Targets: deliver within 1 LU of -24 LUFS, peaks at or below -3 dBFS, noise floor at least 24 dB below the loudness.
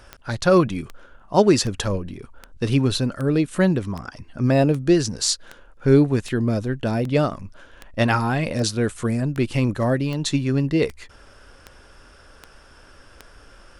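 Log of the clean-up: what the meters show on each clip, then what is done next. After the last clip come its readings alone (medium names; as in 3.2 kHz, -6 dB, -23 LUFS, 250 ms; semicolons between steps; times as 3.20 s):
clicks found 18; loudness -21.5 LUFS; peak level -3.0 dBFS; loudness target -24.0 LUFS
-> de-click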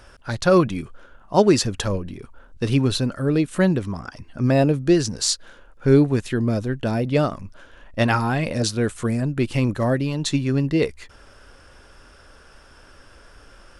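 clicks found 0; loudness -21.5 LUFS; peak level -3.0 dBFS; loudness target -24.0 LUFS
-> trim -2.5 dB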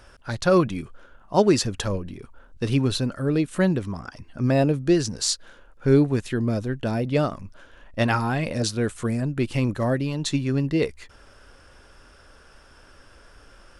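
loudness -24.0 LUFS; peak level -5.5 dBFS; noise floor -52 dBFS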